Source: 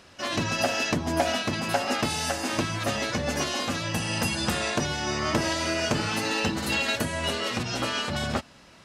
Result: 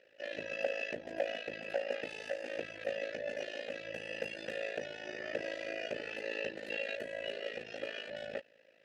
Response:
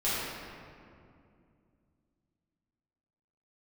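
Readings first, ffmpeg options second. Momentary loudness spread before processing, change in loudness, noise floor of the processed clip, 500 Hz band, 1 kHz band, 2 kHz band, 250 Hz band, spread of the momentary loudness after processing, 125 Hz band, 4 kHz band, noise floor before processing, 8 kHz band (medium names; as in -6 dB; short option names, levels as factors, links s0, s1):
3 LU, -13.0 dB, -65 dBFS, -7.0 dB, -20.5 dB, -11.0 dB, -20.5 dB, 5 LU, -28.5 dB, -17.5 dB, -52 dBFS, -27.5 dB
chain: -filter_complex "[0:a]asplit=3[s0][s1][s2];[s0]bandpass=f=530:t=q:w=8,volume=1[s3];[s1]bandpass=f=1840:t=q:w=8,volume=0.501[s4];[s2]bandpass=f=2480:t=q:w=8,volume=0.355[s5];[s3][s4][s5]amix=inputs=3:normalize=0,tremolo=f=54:d=0.857,volume=1.41"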